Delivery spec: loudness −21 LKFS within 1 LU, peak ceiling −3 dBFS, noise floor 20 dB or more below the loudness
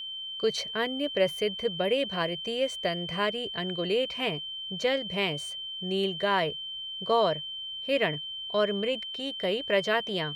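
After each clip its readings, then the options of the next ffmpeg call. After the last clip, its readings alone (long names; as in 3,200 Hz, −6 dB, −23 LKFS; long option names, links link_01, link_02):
interfering tone 3,100 Hz; level of the tone −35 dBFS; integrated loudness −29.0 LKFS; sample peak −12.5 dBFS; target loudness −21.0 LKFS
→ -af "bandreject=frequency=3100:width=30"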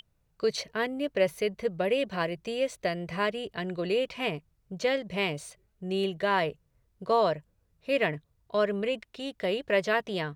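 interfering tone none found; integrated loudness −29.5 LKFS; sample peak −13.0 dBFS; target loudness −21.0 LKFS
→ -af "volume=8.5dB"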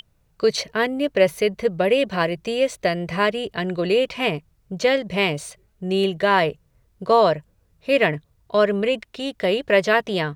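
integrated loudness −21.0 LKFS; sample peak −4.5 dBFS; background noise floor −63 dBFS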